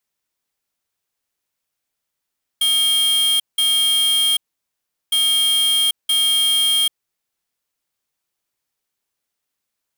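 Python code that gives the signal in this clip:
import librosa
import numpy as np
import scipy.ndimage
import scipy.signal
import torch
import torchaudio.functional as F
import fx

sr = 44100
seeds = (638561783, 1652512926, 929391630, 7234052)

y = fx.beep_pattern(sr, wave='square', hz=3220.0, on_s=0.79, off_s=0.18, beeps=2, pause_s=0.75, groups=2, level_db=-16.5)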